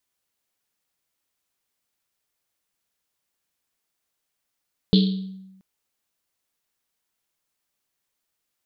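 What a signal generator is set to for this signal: Risset drum length 0.68 s, pitch 190 Hz, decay 1.06 s, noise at 3.8 kHz, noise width 1.3 kHz, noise 20%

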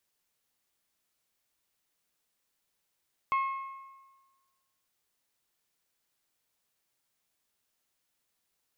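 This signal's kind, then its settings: metal hit bell, lowest mode 1.08 kHz, decay 1.34 s, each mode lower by 10 dB, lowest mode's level -23.5 dB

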